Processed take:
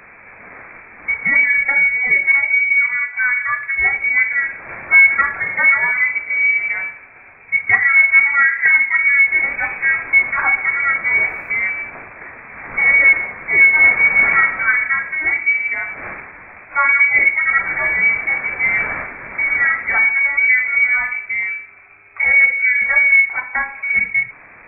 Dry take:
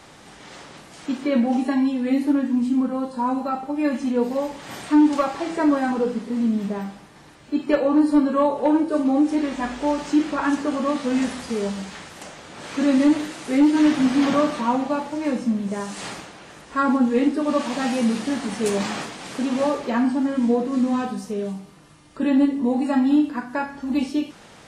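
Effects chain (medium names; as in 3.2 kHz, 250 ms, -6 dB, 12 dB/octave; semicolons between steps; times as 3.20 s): frequency inversion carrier 2.5 kHz; 11.14–11.58 s: word length cut 12-bit, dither triangular; trim +5.5 dB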